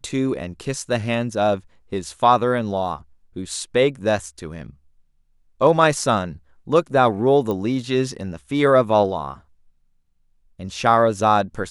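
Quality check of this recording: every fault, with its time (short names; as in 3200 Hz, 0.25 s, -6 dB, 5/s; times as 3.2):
7.51 pop -14 dBFS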